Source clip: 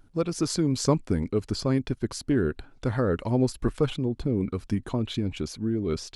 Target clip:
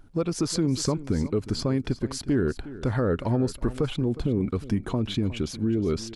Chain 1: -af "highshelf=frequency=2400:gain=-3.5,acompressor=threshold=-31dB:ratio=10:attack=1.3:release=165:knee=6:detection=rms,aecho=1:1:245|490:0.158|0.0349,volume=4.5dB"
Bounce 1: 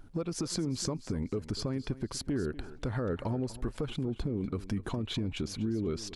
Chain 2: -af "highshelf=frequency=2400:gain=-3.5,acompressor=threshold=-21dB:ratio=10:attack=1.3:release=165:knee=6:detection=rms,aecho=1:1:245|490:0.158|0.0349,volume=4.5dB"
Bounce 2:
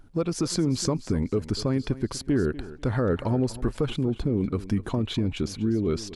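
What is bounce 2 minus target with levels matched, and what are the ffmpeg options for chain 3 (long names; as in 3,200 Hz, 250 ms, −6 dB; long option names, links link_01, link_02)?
echo 117 ms early
-af "highshelf=frequency=2400:gain=-3.5,acompressor=threshold=-21dB:ratio=10:attack=1.3:release=165:knee=6:detection=rms,aecho=1:1:362|724:0.158|0.0349,volume=4.5dB"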